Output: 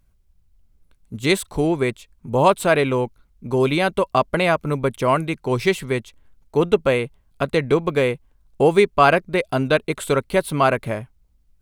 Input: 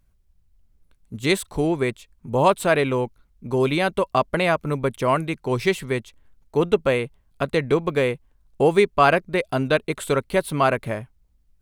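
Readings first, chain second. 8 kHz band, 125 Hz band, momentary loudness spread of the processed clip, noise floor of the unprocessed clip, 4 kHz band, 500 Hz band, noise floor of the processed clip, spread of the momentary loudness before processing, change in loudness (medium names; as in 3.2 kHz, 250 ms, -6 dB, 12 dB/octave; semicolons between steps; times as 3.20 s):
+2.0 dB, +2.0 dB, 10 LU, -62 dBFS, +2.0 dB, +2.0 dB, -60 dBFS, 10 LU, +2.0 dB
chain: band-stop 1.8 kHz, Q 23; trim +2 dB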